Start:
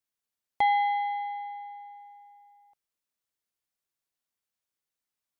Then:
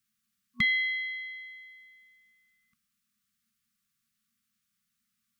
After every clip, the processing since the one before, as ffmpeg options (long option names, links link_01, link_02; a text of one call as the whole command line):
ffmpeg -i in.wav -af "afftfilt=real='re*(1-between(b*sr/4096,240,1100))':imag='im*(1-between(b*sr/4096,240,1100))':win_size=4096:overlap=0.75,equalizer=frequency=240:width=1.1:gain=14.5,volume=8dB" out.wav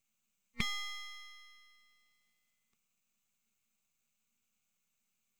ffmpeg -i in.wav -af "superequalizer=11b=0.282:12b=2.24:14b=0.631:15b=2.24:16b=0.355,aeval=exprs='max(val(0),0)':channel_layout=same" out.wav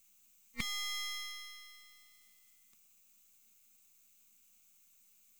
ffmpeg -i in.wav -af "acompressor=threshold=-41dB:ratio=10,crystalizer=i=2.5:c=0,volume=5dB" out.wav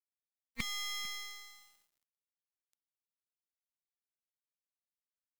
ffmpeg -i in.wav -af "aecho=1:1:449:0.119,aeval=exprs='sgn(val(0))*max(abs(val(0))-0.00316,0)':channel_layout=same,volume=1dB" out.wav